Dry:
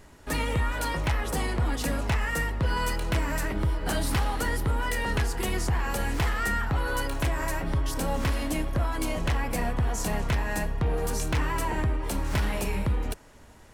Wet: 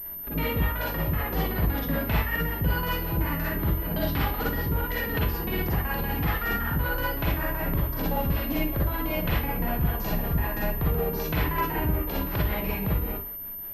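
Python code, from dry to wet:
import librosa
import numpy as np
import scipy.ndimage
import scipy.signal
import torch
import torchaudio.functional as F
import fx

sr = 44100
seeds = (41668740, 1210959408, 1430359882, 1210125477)

y = fx.filter_lfo_lowpass(x, sr, shape='square', hz=5.3, low_hz=320.0, high_hz=3900.0, q=0.84)
y = fx.rev_schroeder(y, sr, rt60_s=0.36, comb_ms=38, drr_db=-4.5)
y = fx.pwm(y, sr, carrier_hz=13000.0)
y = y * librosa.db_to_amplitude(-3.0)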